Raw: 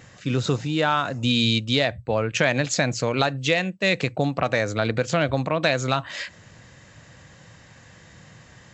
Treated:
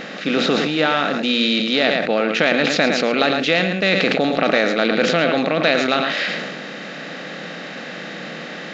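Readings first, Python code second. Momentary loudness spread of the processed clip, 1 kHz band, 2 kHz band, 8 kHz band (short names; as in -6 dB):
14 LU, +4.5 dB, +7.0 dB, n/a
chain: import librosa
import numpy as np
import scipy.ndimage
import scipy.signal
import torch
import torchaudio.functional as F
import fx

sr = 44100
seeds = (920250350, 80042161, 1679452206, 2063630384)

p1 = fx.bin_compress(x, sr, power=0.6)
p2 = scipy.signal.sosfilt(scipy.signal.butter(4, 4700.0, 'lowpass', fs=sr, output='sos'), p1)
p3 = fx.peak_eq(p2, sr, hz=980.0, db=-14.0, octaves=0.2)
p4 = p3 + 10.0 ** (-9.0 / 20.0) * np.pad(p3, (int(109 * sr / 1000.0), 0))[:len(p3)]
p5 = fx.rider(p4, sr, range_db=4, speed_s=0.5)
p6 = p4 + (p5 * 10.0 ** (0.0 / 20.0))
p7 = fx.brickwall_highpass(p6, sr, low_hz=160.0)
p8 = fx.sustainer(p7, sr, db_per_s=31.0)
y = p8 * 10.0 ** (-4.5 / 20.0)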